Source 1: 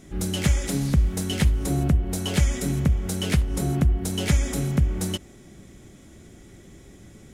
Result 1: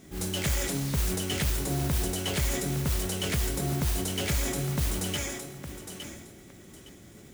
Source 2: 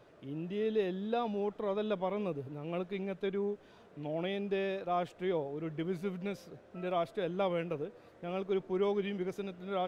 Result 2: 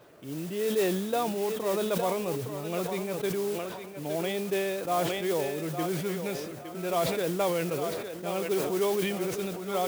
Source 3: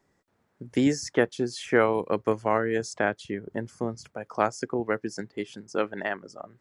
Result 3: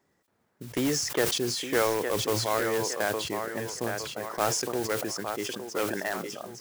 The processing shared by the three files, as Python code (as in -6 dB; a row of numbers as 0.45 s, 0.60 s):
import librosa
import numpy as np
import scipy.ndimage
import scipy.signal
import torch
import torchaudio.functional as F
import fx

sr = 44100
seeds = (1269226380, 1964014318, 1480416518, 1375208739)

p1 = fx.dynamic_eq(x, sr, hz=220.0, q=1.9, threshold_db=-41.0, ratio=4.0, max_db=-6)
p2 = fx.echo_thinned(p1, sr, ms=862, feedback_pct=27, hz=330.0, wet_db=-8.0)
p3 = fx.mod_noise(p2, sr, seeds[0], snr_db=14)
p4 = fx.highpass(p3, sr, hz=88.0, slope=6)
p5 = (np.mod(10.0 ** (18.0 / 20.0) * p4 + 1.0, 2.0) - 1.0) / 10.0 ** (18.0 / 20.0)
p6 = p4 + (p5 * librosa.db_to_amplitude(-7.0))
p7 = fx.sustainer(p6, sr, db_per_s=37.0)
y = p7 * 10.0 ** (-30 / 20.0) / np.sqrt(np.mean(np.square(p7)))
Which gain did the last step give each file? -6.0 dB, +1.5 dB, -4.5 dB